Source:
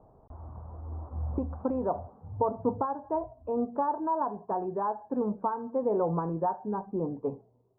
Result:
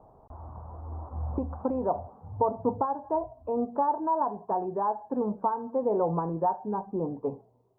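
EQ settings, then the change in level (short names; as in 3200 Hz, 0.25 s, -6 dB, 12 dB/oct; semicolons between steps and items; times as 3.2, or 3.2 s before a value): dynamic EQ 1300 Hz, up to -5 dB, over -43 dBFS, Q 1.1; bell 900 Hz +6 dB 1.2 oct; 0.0 dB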